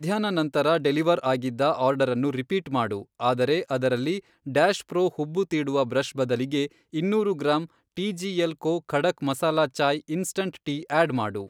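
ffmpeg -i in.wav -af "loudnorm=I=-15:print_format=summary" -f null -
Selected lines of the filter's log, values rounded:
Input Integrated:    -25.4 LUFS
Input True Peak:      -6.9 dBTP
Input LRA:             1.4 LU
Input Threshold:     -35.4 LUFS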